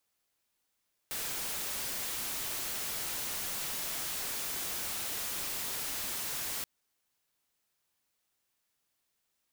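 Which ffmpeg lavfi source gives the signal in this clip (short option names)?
-f lavfi -i "anoisesrc=c=white:a=0.0259:d=5.53:r=44100:seed=1"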